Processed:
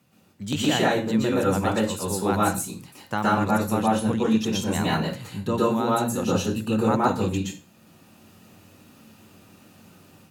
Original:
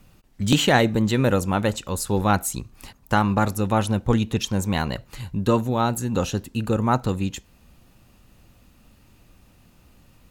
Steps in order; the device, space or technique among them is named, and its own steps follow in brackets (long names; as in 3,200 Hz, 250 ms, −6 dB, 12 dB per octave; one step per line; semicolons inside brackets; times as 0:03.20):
far laptop microphone (convolution reverb RT60 0.35 s, pre-delay 114 ms, DRR −5.5 dB; high-pass filter 110 Hz 24 dB per octave; automatic gain control gain up to 6.5 dB)
level −7 dB